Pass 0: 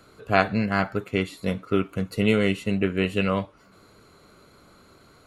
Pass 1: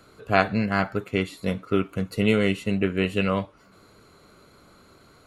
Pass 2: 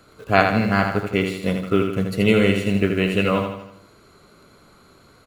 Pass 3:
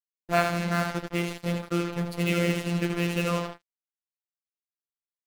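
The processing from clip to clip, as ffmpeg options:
ffmpeg -i in.wav -af anull out.wav
ffmpeg -i in.wav -filter_complex "[0:a]asplit=2[link_01][link_02];[link_02]acrusher=bits=6:mix=0:aa=0.000001,volume=-9.5dB[link_03];[link_01][link_03]amix=inputs=2:normalize=0,aecho=1:1:80|160|240|320|400|480:0.501|0.251|0.125|0.0626|0.0313|0.0157,volume=1dB" out.wav
ffmpeg -i in.wav -af "acrusher=bits=3:mix=0:aa=0.5,afftfilt=real='hypot(re,im)*cos(PI*b)':imag='0':win_size=1024:overlap=0.75,volume=-4.5dB" out.wav

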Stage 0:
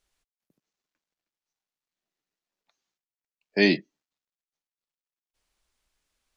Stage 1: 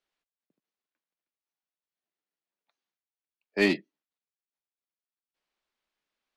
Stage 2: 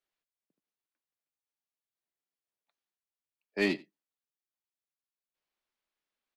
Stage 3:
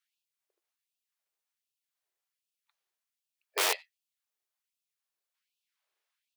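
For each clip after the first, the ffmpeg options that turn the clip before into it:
ffmpeg -i in.wav -filter_complex "[0:a]acrossover=split=160 4700:gain=0.126 1 0.178[link_01][link_02][link_03];[link_01][link_02][link_03]amix=inputs=3:normalize=0,asplit=2[link_04][link_05];[link_05]acrusher=bits=2:mix=0:aa=0.5,volume=-9dB[link_06];[link_04][link_06]amix=inputs=2:normalize=0,volume=-5dB" out.wav
ffmpeg -i in.wav -af "aecho=1:1:89:0.0794,volume=-5dB" out.wav
ffmpeg -i in.wav -af "aeval=exprs='(mod(17.8*val(0)+1,2)-1)/17.8':channel_layout=same,afftfilt=real='re*gte(b*sr/1024,320*pow(2500/320,0.5+0.5*sin(2*PI*1.3*pts/sr)))':imag='im*gte(b*sr/1024,320*pow(2500/320,0.5+0.5*sin(2*PI*1.3*pts/sr)))':win_size=1024:overlap=0.75,volume=5dB" out.wav

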